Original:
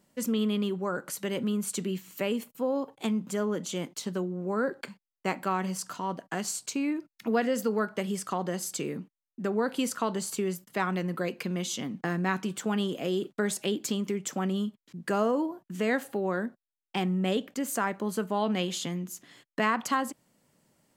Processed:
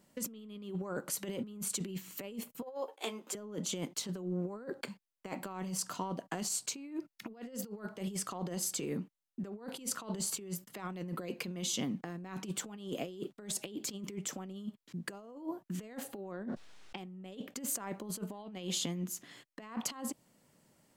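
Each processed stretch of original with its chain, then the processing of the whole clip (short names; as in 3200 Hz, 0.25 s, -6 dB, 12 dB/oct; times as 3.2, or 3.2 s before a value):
2.62–3.35 HPF 390 Hz 24 dB/oct + doubler 13 ms -6.5 dB
16.32–16.98 air absorption 110 m + fast leveller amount 70%
whole clip: dynamic EQ 1600 Hz, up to -6 dB, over -48 dBFS, Q 1.6; negative-ratio compressor -34 dBFS, ratio -0.5; gain -4.5 dB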